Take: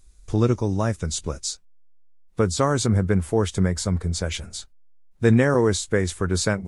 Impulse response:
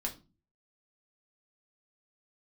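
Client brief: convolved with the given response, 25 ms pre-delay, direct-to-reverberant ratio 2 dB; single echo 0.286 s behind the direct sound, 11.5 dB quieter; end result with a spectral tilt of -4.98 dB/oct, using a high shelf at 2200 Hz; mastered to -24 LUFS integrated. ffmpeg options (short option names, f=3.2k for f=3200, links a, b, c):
-filter_complex "[0:a]highshelf=f=2.2k:g=3.5,aecho=1:1:286:0.266,asplit=2[a][b];[1:a]atrim=start_sample=2205,adelay=25[c];[b][c]afir=irnorm=-1:irlink=0,volume=-3.5dB[d];[a][d]amix=inputs=2:normalize=0,volume=-4dB"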